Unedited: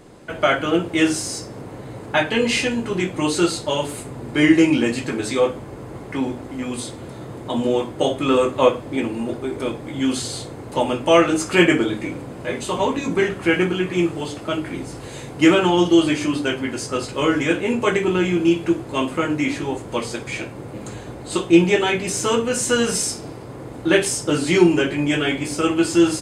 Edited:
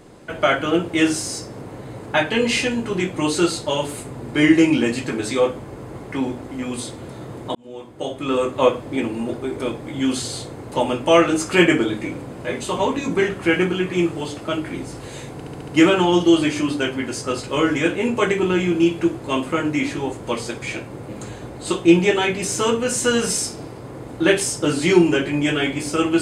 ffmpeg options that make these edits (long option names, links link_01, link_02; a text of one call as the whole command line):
ffmpeg -i in.wav -filter_complex "[0:a]asplit=7[link_01][link_02][link_03][link_04][link_05][link_06][link_07];[link_01]atrim=end=7.55,asetpts=PTS-STARTPTS,afade=type=out:start_time=7.546:duration=0.004:curve=hsin[link_08];[link_02]atrim=start=7.55:end=15.402,asetpts=PTS-STARTPTS,afade=type=in:duration=1.21[link_09];[link_03]atrim=start=15.328:end=15.402[link_10];[link_04]atrim=start=15.328:end=15.402[link_11];[link_05]atrim=start=15.328:end=15.402[link_12];[link_06]atrim=start=15.328:end=15.402[link_13];[link_07]atrim=start=15.328[link_14];[link_08][link_09]concat=n=2:v=0:a=1[link_15];[link_15][link_10]acrossfade=duration=0.004:curve1=hsin:curve2=hsin[link_16];[link_16][link_11]acrossfade=duration=0.004:curve1=hsin:curve2=hsin[link_17];[link_17][link_12]acrossfade=duration=0.004:curve1=hsin:curve2=hsin[link_18];[link_18][link_13]acrossfade=duration=0.004:curve1=hsin:curve2=hsin[link_19];[link_19][link_14]acrossfade=duration=0.004:curve1=hsin:curve2=hsin" out.wav